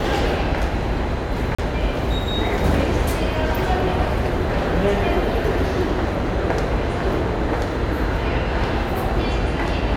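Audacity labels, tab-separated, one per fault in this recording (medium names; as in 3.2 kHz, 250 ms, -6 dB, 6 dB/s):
1.550000	1.580000	dropout 35 ms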